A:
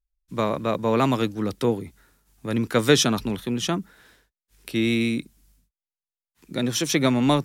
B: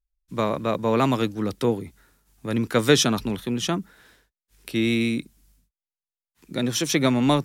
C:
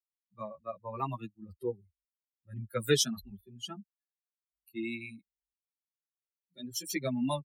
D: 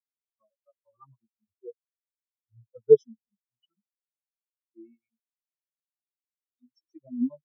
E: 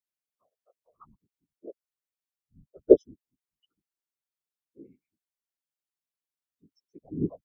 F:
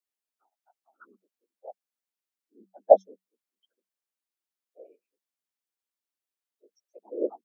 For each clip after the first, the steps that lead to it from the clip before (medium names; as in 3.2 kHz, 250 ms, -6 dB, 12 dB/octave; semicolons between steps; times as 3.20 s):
no audible change
expander on every frequency bin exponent 3; treble shelf 6 kHz +9 dB; endless flanger 8.2 ms +1.2 Hz; trim -4.5 dB
in parallel at +0.5 dB: compression, threshold -42 dBFS, peak gain reduction 20 dB; on the sum: spectral contrast expander 4:1; trim +6 dB
whisper effect; trim -1 dB
frequency shift +190 Hz